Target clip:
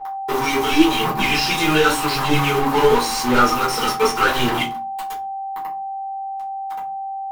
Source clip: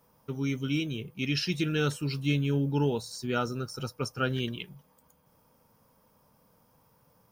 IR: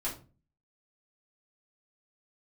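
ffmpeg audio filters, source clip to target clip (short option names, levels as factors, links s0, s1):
-filter_complex "[0:a]aemphasis=mode=production:type=75fm,aphaser=in_gain=1:out_gain=1:delay=4.9:decay=0.72:speed=0.89:type=sinusoidal,asplit=2[s0][s1];[s1]acompressor=threshold=0.0282:ratio=12,volume=1.41[s2];[s0][s2]amix=inputs=2:normalize=0,acrusher=bits=4:mix=0:aa=0.000001,equalizer=f=100:t=o:w=0.67:g=-4,equalizer=f=250:t=o:w=0.67:g=7,equalizer=f=1000:t=o:w=0.67:g=11,asplit=2[s3][s4];[s4]highpass=f=720:p=1,volume=22.4,asoftclip=type=tanh:threshold=0.841[s5];[s3][s5]amix=inputs=2:normalize=0,lowpass=f=3200:p=1,volume=0.501,aeval=exprs='val(0)+0.0631*sin(2*PI*780*n/s)':c=same[s6];[1:a]atrim=start_sample=2205,asetrate=52920,aresample=44100[s7];[s6][s7]afir=irnorm=-1:irlink=0,volume=0.376"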